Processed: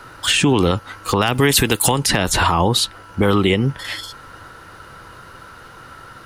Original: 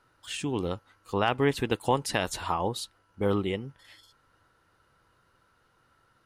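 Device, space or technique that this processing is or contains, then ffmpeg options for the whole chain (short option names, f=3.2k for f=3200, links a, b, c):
mastering chain: -filter_complex "[0:a]equalizer=f=1.4k:t=o:w=0.77:g=2,acrossover=split=330|1000|3300[a][b][c][d];[a]acompressor=threshold=-35dB:ratio=4[e];[b]acompressor=threshold=-40dB:ratio=4[f];[c]acompressor=threshold=-39dB:ratio=4[g];[d]acompressor=threshold=-43dB:ratio=4[h];[e][f][g][h]amix=inputs=4:normalize=0,acompressor=threshold=-41dB:ratio=1.5,asoftclip=type=hard:threshold=-25.5dB,alimiter=level_in=30.5dB:limit=-1dB:release=50:level=0:latency=1,asettb=1/sr,asplit=3[i][j][k];[i]atrim=end=1.214[l];[j]atrim=start=1.21:end=1.92,asetpts=PTS-STARTPTS,afade=t=in:d=0.004:c=qsin,afade=t=out:st=0.706:d=0.004:c=qsin,aemphasis=mode=production:type=50kf[m];[k]atrim=start=1.916[n];[l][m]acrossfade=d=0.004:c1=hsin:c2=qsin[o];[o][n]acrossfade=d=0.004:c1=qsin:c2=hsin,volume=-5dB"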